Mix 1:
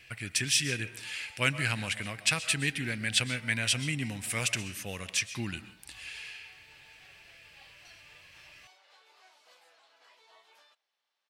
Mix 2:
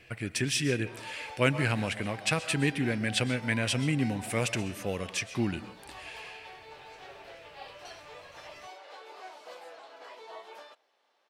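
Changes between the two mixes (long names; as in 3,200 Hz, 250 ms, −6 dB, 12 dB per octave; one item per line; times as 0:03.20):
speech −11.0 dB
master: remove guitar amp tone stack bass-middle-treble 5-5-5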